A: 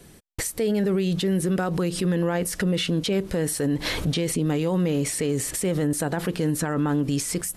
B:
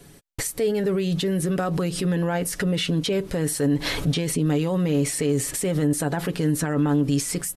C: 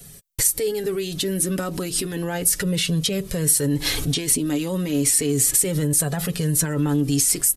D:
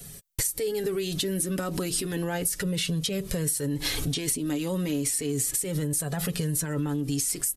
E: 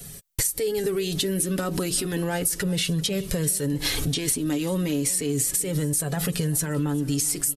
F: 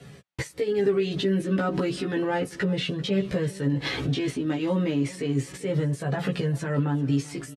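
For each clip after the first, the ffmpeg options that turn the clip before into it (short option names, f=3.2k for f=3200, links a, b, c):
-af "aecho=1:1:7.1:0.41"
-filter_complex "[0:a]acrossover=split=310[a][b];[a]acontrast=80[c];[c][b]amix=inputs=2:normalize=0,crystalizer=i=4.5:c=0,flanger=delay=1.5:depth=1.9:regen=-35:speed=0.32:shape=triangular,volume=-1dB"
-af "acompressor=threshold=-25dB:ratio=6"
-af "aecho=1:1:390|780|1170:0.1|0.043|0.0185,volume=3dB"
-filter_complex "[0:a]highpass=110,lowpass=2.5k,asplit=2[a][b];[b]adelay=15,volume=-2dB[c];[a][c]amix=inputs=2:normalize=0"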